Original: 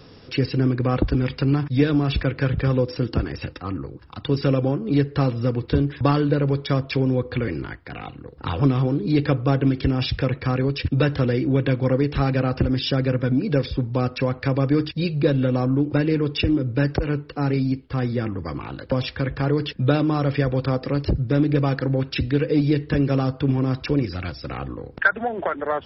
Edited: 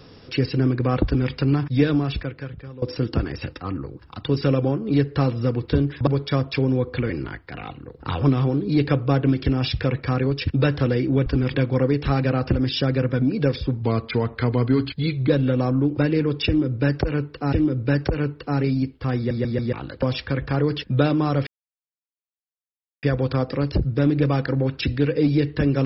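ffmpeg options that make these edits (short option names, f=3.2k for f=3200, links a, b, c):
-filter_complex "[0:a]asplit=13[a][b][c][d][e][f][g][h][i][j][k][l][m];[a]atrim=end=2.82,asetpts=PTS-STARTPTS,afade=t=out:st=1.92:d=0.9:c=qua:silence=0.112202[n];[b]atrim=start=2.82:end=6.072,asetpts=PTS-STARTPTS,afade=t=in:d=0.004:c=hsin:silence=0.112202[o];[c]atrim=start=6.448:end=11.642[p];[d]atrim=start=1.048:end=1.332[q];[e]atrim=start=11.638:end=13.924[r];[f]atrim=start=13.92:end=15.25,asetpts=PTS-STARTPTS,asetrate=39690,aresample=44100[s];[g]atrim=start=15.246:end=17.482[t];[h]atrim=start=16.418:end=18.202[u];[i]atrim=start=18.058:end=18.202[v];[j]atrim=start=18.058:end=18.202[w];[k]atrim=start=18.058:end=18.202[x];[l]atrim=start=18.618:end=20.36,asetpts=PTS-STARTPTS,afade=t=out:st=1.738:d=0.004:c=hsin,apad=pad_dur=1.56[y];[m]atrim=start=20.36,asetpts=PTS-STARTPTS,afade=t=in:d=0.004:c=hsin[z];[n][o]concat=n=2:v=0:a=1[aa];[aa][p]acrossfade=d=0.004:c1=hsin:c2=hsin[ab];[ab][q]acrossfade=d=0.004:c1=hsin:c2=hsin[ac];[ac][r]acrossfade=d=0.004:c1=hsin:c2=hsin[ad];[ad][s]acrossfade=d=0.004:c1=hsin:c2=hsin[ae];[ae][t]acrossfade=d=0.004:c1=hsin:c2=hsin[af];[af][u]acrossfade=d=0.004:c1=hsin:c2=hsin[ag];[ag][v]acrossfade=d=0.004:c1=hsin:c2=hsin[ah];[ah][w]acrossfade=d=0.004:c1=hsin:c2=hsin[ai];[ai][x]acrossfade=d=0.004:c1=hsin:c2=hsin[aj];[y][z]concat=n=2:v=0:a=1[ak];[aj][ak]acrossfade=d=0.004:c1=hsin:c2=hsin"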